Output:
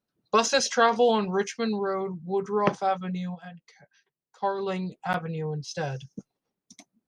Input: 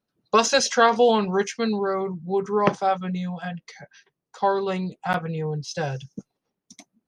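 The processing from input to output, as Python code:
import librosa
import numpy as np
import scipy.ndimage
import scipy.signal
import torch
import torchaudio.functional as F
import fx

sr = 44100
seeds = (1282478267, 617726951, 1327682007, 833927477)

y = fx.upward_expand(x, sr, threshold_db=-31.0, expansion=1.5, at=(3.34, 4.58), fade=0.02)
y = y * librosa.db_to_amplitude(-3.5)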